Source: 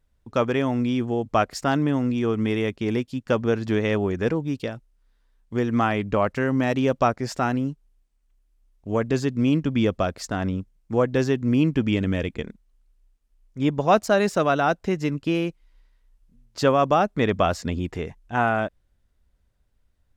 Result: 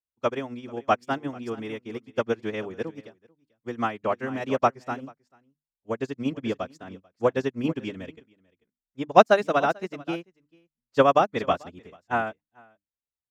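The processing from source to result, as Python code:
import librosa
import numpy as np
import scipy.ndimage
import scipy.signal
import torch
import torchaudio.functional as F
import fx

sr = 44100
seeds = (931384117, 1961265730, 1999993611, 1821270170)

y = fx.highpass(x, sr, hz=230.0, slope=6)
y = fx.hum_notches(y, sr, base_hz=50, count=6)
y = fx.stretch_vocoder(y, sr, factor=0.66)
y = y + 10.0 ** (-11.0 / 20.0) * np.pad(y, (int(441 * sr / 1000.0), 0))[:len(y)]
y = fx.upward_expand(y, sr, threshold_db=-37.0, expansion=2.5)
y = y * 10.0 ** (7.0 / 20.0)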